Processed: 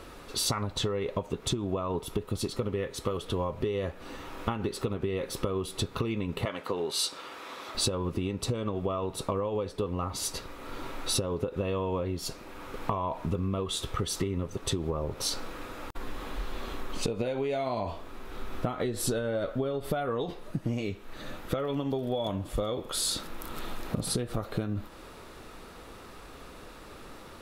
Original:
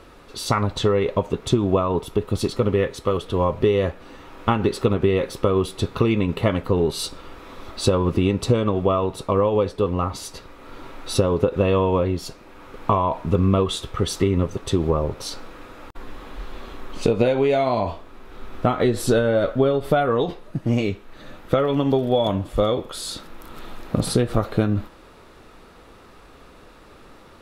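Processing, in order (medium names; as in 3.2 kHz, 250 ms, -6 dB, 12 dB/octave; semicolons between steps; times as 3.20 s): 6.45–7.75 s: frequency weighting A; compression 6:1, threshold -28 dBFS, peak gain reduction 15 dB; treble shelf 5.8 kHz +6.5 dB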